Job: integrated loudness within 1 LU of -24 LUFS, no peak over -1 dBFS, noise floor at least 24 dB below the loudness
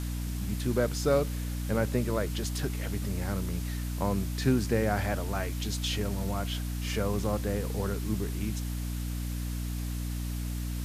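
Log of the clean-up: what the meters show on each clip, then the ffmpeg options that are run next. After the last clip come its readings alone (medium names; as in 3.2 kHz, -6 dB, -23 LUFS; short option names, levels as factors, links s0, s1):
hum 60 Hz; highest harmonic 300 Hz; hum level -31 dBFS; noise floor -34 dBFS; noise floor target -56 dBFS; loudness -31.5 LUFS; peak level -12.5 dBFS; loudness target -24.0 LUFS
-> -af "bandreject=f=60:t=h:w=6,bandreject=f=120:t=h:w=6,bandreject=f=180:t=h:w=6,bandreject=f=240:t=h:w=6,bandreject=f=300:t=h:w=6"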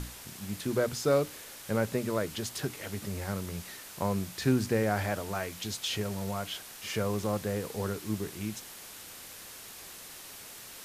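hum not found; noise floor -47 dBFS; noise floor target -57 dBFS
-> -af "afftdn=nr=10:nf=-47"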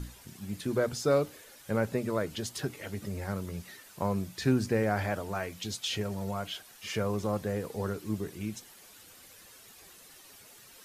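noise floor -54 dBFS; noise floor target -57 dBFS
-> -af "afftdn=nr=6:nf=-54"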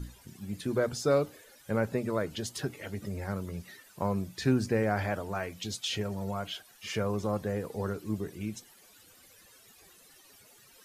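noise floor -58 dBFS; loudness -33.0 LUFS; peak level -14.5 dBFS; loudness target -24.0 LUFS
-> -af "volume=2.82"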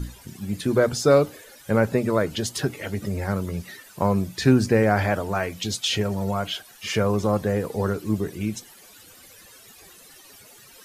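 loudness -24.0 LUFS; peak level -5.5 dBFS; noise floor -49 dBFS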